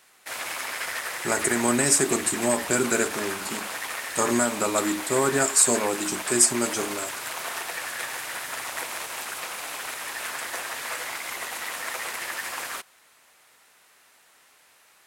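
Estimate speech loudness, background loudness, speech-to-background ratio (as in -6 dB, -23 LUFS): -23.0 LUFS, -31.5 LUFS, 8.5 dB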